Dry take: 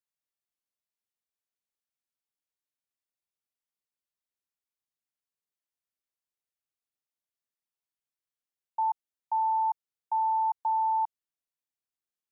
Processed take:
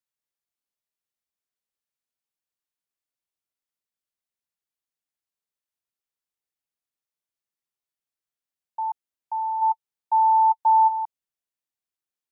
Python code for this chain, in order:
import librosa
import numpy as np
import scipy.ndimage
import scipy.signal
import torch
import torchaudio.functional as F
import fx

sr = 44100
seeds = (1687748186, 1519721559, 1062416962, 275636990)

y = fx.small_body(x, sr, hz=(890.0,), ring_ms=45, db=fx.line((9.61, 7.0), (10.87, 11.0)), at=(9.61, 10.87), fade=0.02)